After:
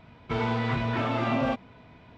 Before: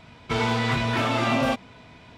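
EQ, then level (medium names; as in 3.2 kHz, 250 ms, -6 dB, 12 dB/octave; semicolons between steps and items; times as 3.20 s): tape spacing loss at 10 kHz 22 dB; -2.0 dB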